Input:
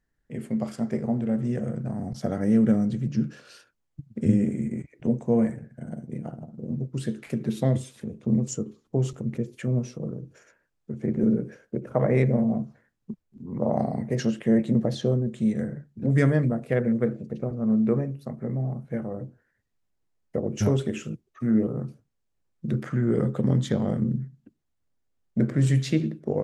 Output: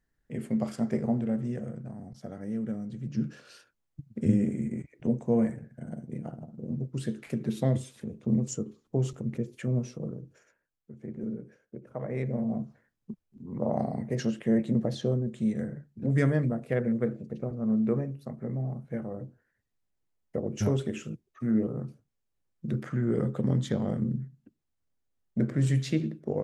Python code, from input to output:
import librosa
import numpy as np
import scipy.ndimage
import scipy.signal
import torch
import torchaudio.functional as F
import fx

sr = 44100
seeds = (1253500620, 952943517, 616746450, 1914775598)

y = fx.gain(x, sr, db=fx.line((1.08, -1.0), (2.17, -13.0), (2.86, -13.0), (3.26, -3.0), (10.04, -3.0), (10.91, -13.0), (12.06, -13.0), (12.62, -4.0)))